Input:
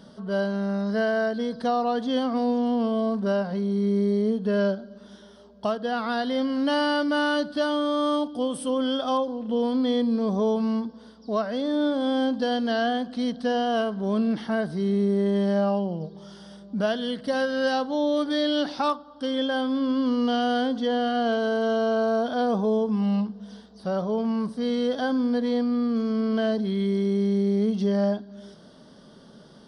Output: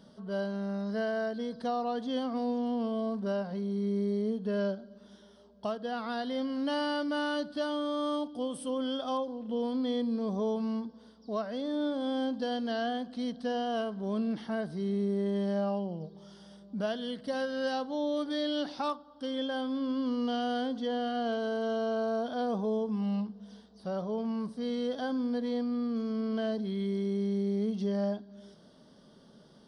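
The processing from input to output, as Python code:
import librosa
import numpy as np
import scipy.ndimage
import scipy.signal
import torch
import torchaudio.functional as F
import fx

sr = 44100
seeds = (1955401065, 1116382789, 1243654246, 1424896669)

y = fx.peak_eq(x, sr, hz=1500.0, db=-2.0, octaves=0.77)
y = y * 10.0 ** (-7.5 / 20.0)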